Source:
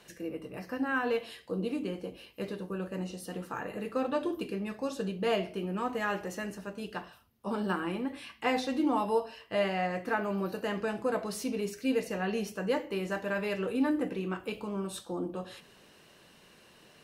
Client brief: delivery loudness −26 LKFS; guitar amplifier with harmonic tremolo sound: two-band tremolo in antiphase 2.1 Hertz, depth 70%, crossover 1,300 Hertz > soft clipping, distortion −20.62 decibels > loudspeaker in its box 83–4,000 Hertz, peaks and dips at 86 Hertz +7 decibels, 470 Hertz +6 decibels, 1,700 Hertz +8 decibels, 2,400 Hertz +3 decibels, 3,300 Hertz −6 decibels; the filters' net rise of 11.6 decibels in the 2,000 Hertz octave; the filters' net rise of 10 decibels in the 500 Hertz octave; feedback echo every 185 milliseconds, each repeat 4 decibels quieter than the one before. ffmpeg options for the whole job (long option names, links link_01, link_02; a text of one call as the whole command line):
ffmpeg -i in.wav -filter_complex "[0:a]equalizer=frequency=500:width_type=o:gain=6.5,equalizer=frequency=2000:width_type=o:gain=7,aecho=1:1:185|370|555|740|925|1110|1295|1480|1665:0.631|0.398|0.25|0.158|0.0994|0.0626|0.0394|0.0249|0.0157,acrossover=split=1300[link_01][link_02];[link_01]aeval=exprs='val(0)*(1-0.7/2+0.7/2*cos(2*PI*2.1*n/s))':channel_layout=same[link_03];[link_02]aeval=exprs='val(0)*(1-0.7/2-0.7/2*cos(2*PI*2.1*n/s))':channel_layout=same[link_04];[link_03][link_04]amix=inputs=2:normalize=0,asoftclip=threshold=-18dB,highpass=83,equalizer=frequency=86:width_type=q:width=4:gain=7,equalizer=frequency=470:width_type=q:width=4:gain=6,equalizer=frequency=1700:width_type=q:width=4:gain=8,equalizer=frequency=2400:width_type=q:width=4:gain=3,equalizer=frequency=3300:width_type=q:width=4:gain=-6,lowpass=frequency=4000:width=0.5412,lowpass=frequency=4000:width=1.3066,volume=2dB" out.wav